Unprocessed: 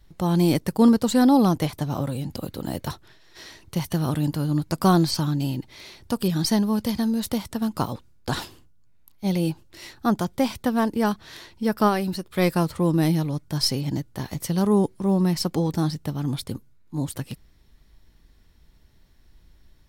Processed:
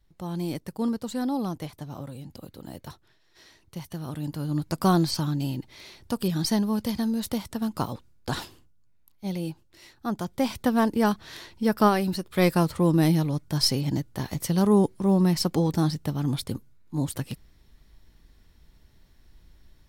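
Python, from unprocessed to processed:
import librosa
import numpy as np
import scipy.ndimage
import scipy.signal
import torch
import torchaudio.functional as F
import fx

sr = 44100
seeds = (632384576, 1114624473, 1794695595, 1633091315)

y = fx.gain(x, sr, db=fx.line((4.04, -11.0), (4.63, -3.0), (8.34, -3.0), (9.95, -10.0), (10.61, 0.0)))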